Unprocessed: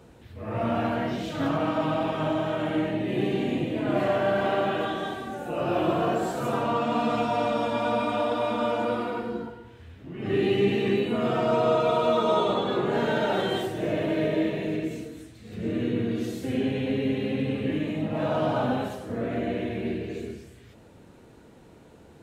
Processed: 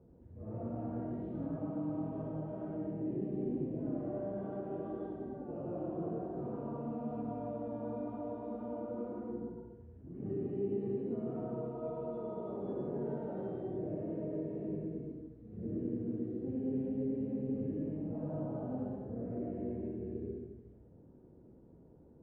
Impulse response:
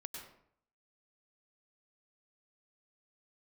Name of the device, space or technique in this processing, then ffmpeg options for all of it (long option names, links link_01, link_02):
television next door: -filter_complex "[0:a]acompressor=threshold=-27dB:ratio=3,lowpass=460[link_01];[1:a]atrim=start_sample=2205[link_02];[link_01][link_02]afir=irnorm=-1:irlink=0,volume=-3dB"